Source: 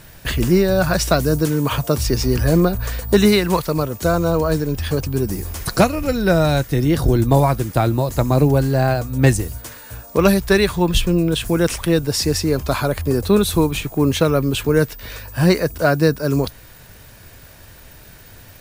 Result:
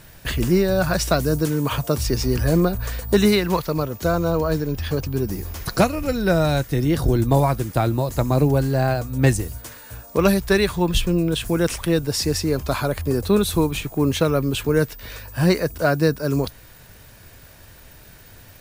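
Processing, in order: 3.35–5.78 bell 8800 Hz -7.5 dB 0.51 oct; gain -3 dB

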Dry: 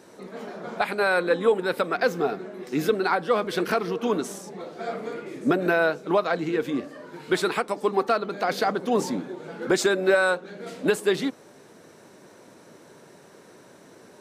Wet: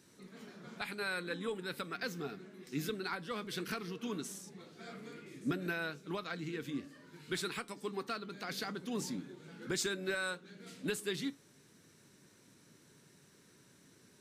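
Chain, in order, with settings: passive tone stack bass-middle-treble 6-0-2; resonator 140 Hz, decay 0.22 s, harmonics all, mix 40%; gain +11 dB

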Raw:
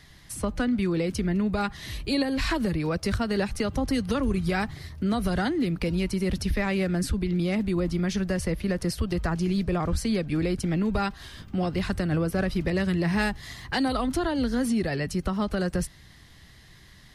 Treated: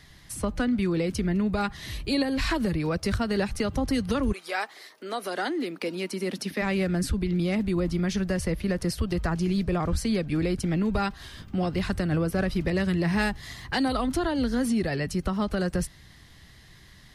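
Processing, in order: 4.32–6.61 HPF 520 Hz -> 190 Hz 24 dB/oct

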